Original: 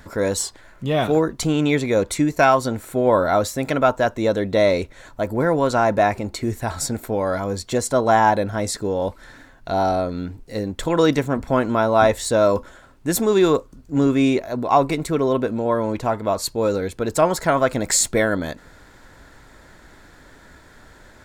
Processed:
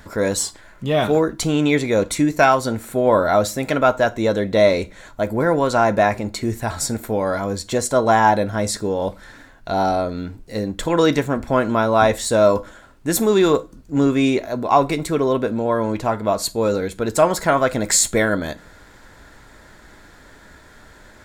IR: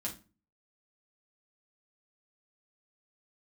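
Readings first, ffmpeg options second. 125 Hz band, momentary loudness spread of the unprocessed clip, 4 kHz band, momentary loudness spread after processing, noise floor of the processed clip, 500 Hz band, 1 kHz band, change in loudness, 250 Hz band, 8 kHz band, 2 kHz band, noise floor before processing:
+0.5 dB, 9 LU, +2.0 dB, 9 LU, -47 dBFS, +1.0 dB, +1.0 dB, +1.5 dB, +1.0 dB, +2.0 dB, +2.0 dB, -48 dBFS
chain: -filter_complex "[0:a]asplit=2[a][b];[1:a]atrim=start_sample=2205,lowshelf=f=490:g=-10[c];[b][c]afir=irnorm=-1:irlink=0,volume=-7.5dB[d];[a][d]amix=inputs=2:normalize=0"

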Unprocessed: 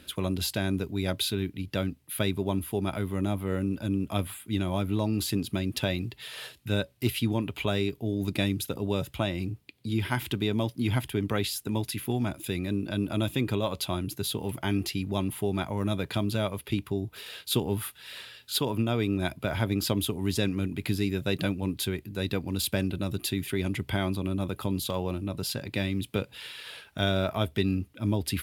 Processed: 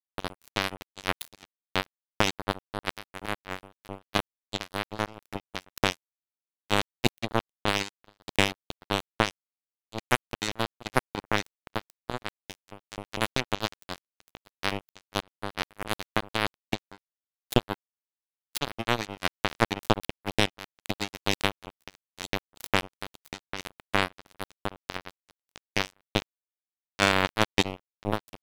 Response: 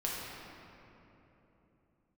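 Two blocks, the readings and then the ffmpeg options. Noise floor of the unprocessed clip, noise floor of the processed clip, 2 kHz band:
-57 dBFS, under -85 dBFS, +5.5 dB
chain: -af "acrusher=bits=2:mix=0:aa=0.5,volume=6.5dB"

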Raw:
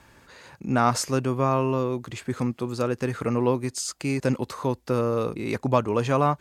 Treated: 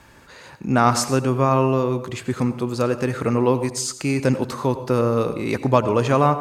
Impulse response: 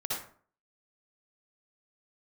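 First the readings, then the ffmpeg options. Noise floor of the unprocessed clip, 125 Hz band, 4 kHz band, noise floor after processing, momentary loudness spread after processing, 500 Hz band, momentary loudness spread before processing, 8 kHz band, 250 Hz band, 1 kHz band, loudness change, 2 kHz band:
-57 dBFS, +5.0 dB, +4.5 dB, -46 dBFS, 7 LU, +5.0 dB, 7 LU, +4.5 dB, +5.0 dB, +5.0 dB, +5.0 dB, +4.5 dB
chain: -filter_complex "[0:a]asplit=2[a][b];[1:a]atrim=start_sample=2205,asetrate=31752,aresample=44100[c];[b][c]afir=irnorm=-1:irlink=0,volume=-17dB[d];[a][d]amix=inputs=2:normalize=0,volume=3.5dB"

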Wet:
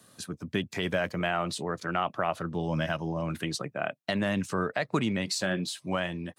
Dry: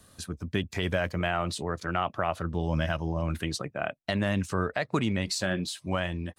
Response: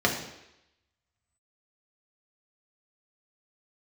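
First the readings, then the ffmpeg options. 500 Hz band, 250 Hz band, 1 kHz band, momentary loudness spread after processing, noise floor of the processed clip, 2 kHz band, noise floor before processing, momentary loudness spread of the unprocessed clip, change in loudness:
0.0 dB, 0.0 dB, 0.0 dB, 4 LU, -65 dBFS, 0.0 dB, -64 dBFS, 4 LU, -0.5 dB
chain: -af "highpass=f=120:w=0.5412,highpass=f=120:w=1.3066"

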